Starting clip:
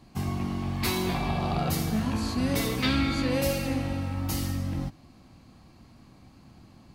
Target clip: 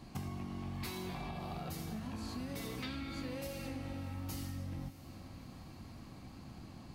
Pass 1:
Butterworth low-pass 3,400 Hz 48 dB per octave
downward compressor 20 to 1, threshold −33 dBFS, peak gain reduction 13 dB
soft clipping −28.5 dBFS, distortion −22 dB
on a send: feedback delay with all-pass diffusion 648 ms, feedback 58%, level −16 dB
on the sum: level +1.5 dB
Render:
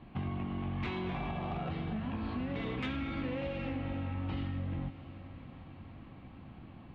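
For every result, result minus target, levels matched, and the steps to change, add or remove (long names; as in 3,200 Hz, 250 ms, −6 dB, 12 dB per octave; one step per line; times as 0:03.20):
4,000 Hz band −6.5 dB; downward compressor: peak gain reduction −6.5 dB
remove: Butterworth low-pass 3,400 Hz 48 dB per octave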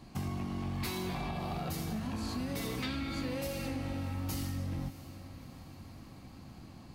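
downward compressor: peak gain reduction −6 dB
change: downward compressor 20 to 1, threshold −39.5 dBFS, peak gain reduction 19 dB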